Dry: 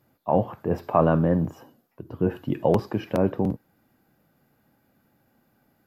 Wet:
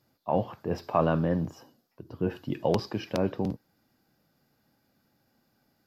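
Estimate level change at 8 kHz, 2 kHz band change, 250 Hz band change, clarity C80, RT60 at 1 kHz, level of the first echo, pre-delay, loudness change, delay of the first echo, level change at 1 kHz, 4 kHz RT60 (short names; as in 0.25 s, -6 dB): n/a, -2.5 dB, -5.5 dB, none, none, none, none, -5.0 dB, none, -4.5 dB, none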